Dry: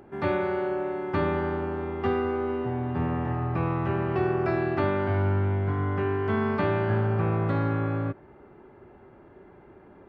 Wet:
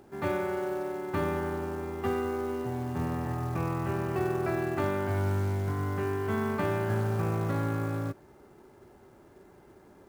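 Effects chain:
log-companded quantiser 6 bits
level −4 dB

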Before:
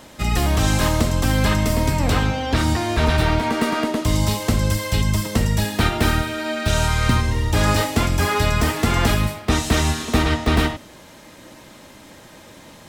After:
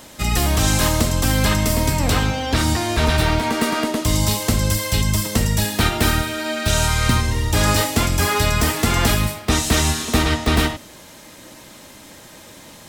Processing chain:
high-shelf EQ 4,300 Hz +8 dB

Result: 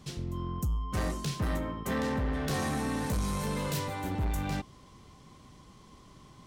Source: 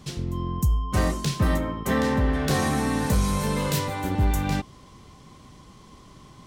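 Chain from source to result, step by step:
soft clipping −19.5 dBFS, distortion −15 dB
level −5.5 dB

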